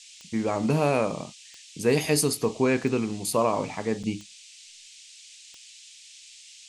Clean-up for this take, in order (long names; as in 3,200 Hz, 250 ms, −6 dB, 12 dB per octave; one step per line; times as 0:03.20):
click removal
repair the gap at 0:04.03, 6.5 ms
noise reduction from a noise print 22 dB